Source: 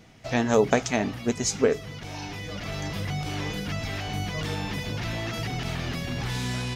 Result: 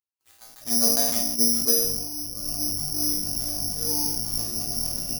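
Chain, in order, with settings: Wiener smoothing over 25 samples; tone controls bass +7 dB, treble -2 dB; AGC gain up to 13.5 dB; tempo 1.3×; resonator bank A#3 major, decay 0.44 s; bands offset in time highs, lows 0.41 s, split 3900 Hz; careless resampling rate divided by 8×, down none, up zero stuff; sustainer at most 41 dB/s; gain +2 dB

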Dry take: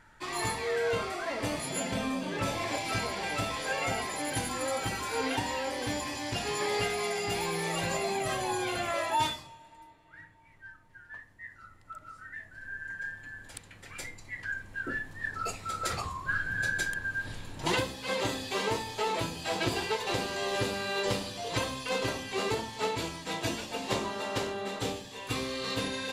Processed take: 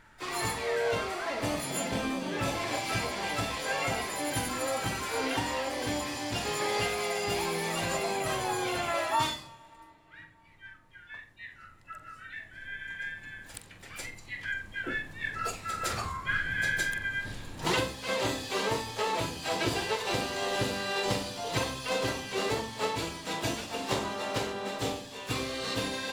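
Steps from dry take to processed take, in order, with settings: harmoniser +4 st -12 dB, +7 st -16 dB, +12 st -16 dB; flutter echo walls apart 7.6 m, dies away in 0.23 s

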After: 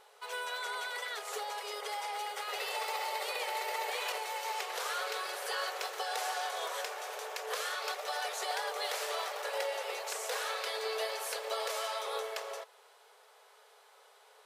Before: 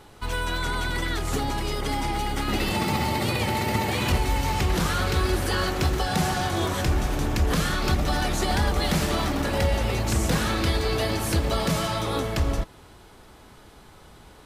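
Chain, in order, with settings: brick-wall FIR high-pass 400 Hz; gain -8 dB

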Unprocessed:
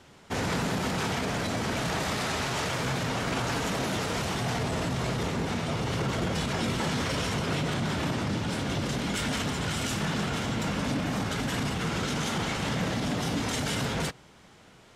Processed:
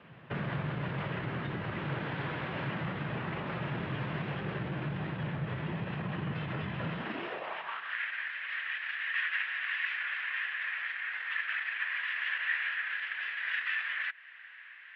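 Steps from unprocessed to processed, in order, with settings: compressor 2.5:1, threshold -37 dBFS, peak gain reduction 8.5 dB; bell 2000 Hz +4 dB 0.42 oct, from 7.93 s +12.5 dB; mistuned SSB -320 Hz 160–3400 Hz; high-pass sweep 140 Hz -> 2000 Hz, 6.84–7.99

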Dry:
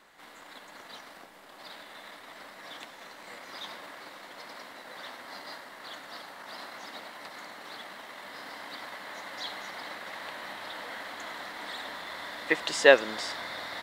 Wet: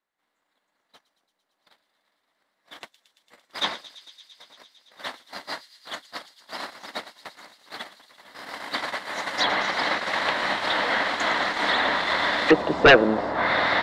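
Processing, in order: gate -40 dBFS, range -45 dB; treble ducked by the level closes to 680 Hz, closed at -29.5 dBFS; thin delay 0.113 s, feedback 85%, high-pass 4400 Hz, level -12 dB; sine folder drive 14 dB, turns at -7.5 dBFS

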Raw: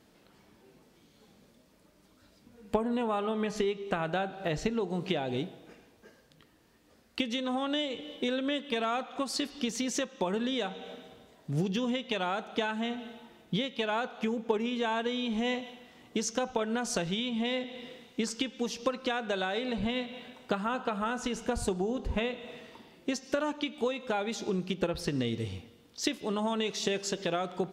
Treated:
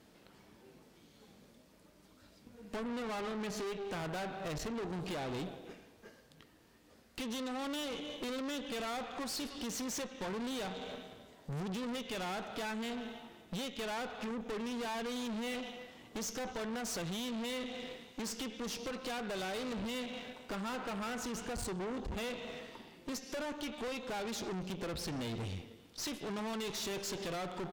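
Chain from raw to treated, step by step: speakerphone echo 0.31 s, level -20 dB; tube stage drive 41 dB, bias 0.7; gain +4 dB

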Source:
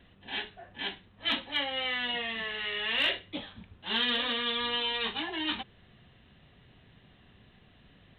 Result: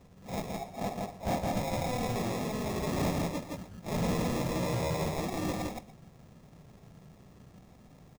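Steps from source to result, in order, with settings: median filter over 9 samples; sample-rate reducer 1500 Hz, jitter 0%; 0.61–1.45 bell 720 Hz +8 dB 0.74 oct; echo 0.166 s -3.5 dB; soft clip -27.5 dBFS, distortion -15 dB; fifteen-band EQ 160 Hz +8 dB, 630 Hz +4 dB, 6300 Hz +4 dB; echo 0.119 s -15.5 dB

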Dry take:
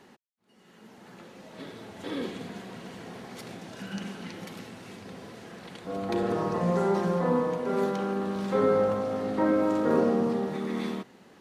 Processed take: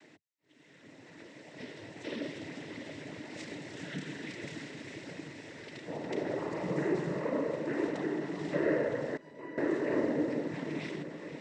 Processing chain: 3.29–5.23 doubler 30 ms -4 dB; on a send: diffused feedback echo 0.57 s, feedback 53%, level -10 dB; on the sum: noise vocoder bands 12; 9.17–9.58 resonator 990 Hz, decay 0.26 s, mix 90%; in parallel at -0.5 dB: compressor, threshold -35 dBFS, peak gain reduction 15.5 dB; on the sum: thirty-one-band EQ 200 Hz -9 dB, 315 Hz +5 dB, 800 Hz -6 dB, 1250 Hz -10 dB, 2000 Hz +9 dB; gain -8 dB

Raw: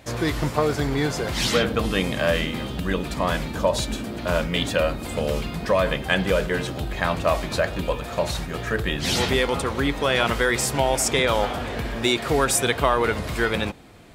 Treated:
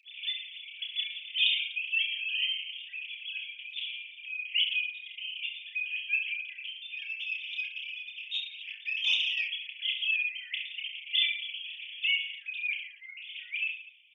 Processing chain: sine-wave speech; steep high-pass 2500 Hz 72 dB/oct; comb 6.8 ms, depth 49%; reverse bouncing-ball echo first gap 30 ms, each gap 1.25×, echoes 5; FDN reverb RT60 0.87 s, high-frequency decay 0.45×, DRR 14.5 dB; 6.97–9.49 Doppler distortion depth 0.15 ms; gain +4.5 dB

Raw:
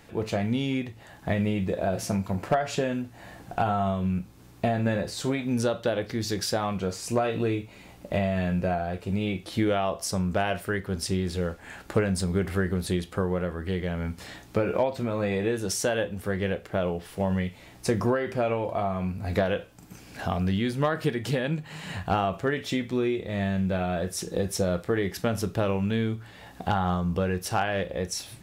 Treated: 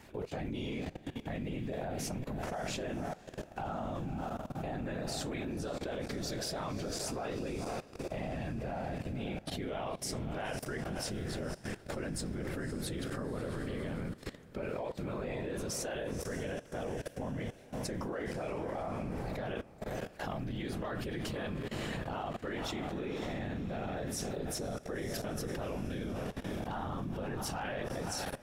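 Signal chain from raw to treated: whisperiser; diffused feedback echo 0.548 s, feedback 55%, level -10.5 dB; level quantiser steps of 18 dB; gain -1.5 dB

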